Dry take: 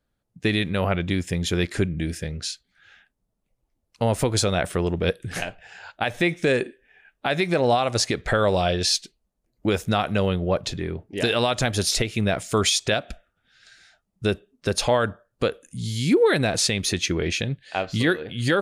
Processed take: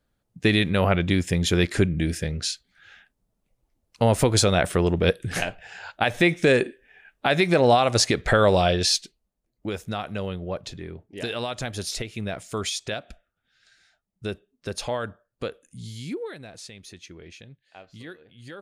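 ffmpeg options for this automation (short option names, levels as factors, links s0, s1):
-af "volume=1.33,afade=t=out:st=8.52:d=1.17:silence=0.298538,afade=t=out:st=15.79:d=0.56:silence=0.251189"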